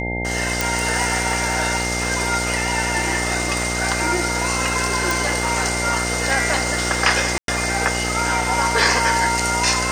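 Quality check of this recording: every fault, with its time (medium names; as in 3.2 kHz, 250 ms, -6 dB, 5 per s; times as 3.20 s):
buzz 60 Hz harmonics 15 -26 dBFS
whine 2.1 kHz -26 dBFS
0.61 s: pop
5.11 s: pop
7.38–7.48 s: dropout 102 ms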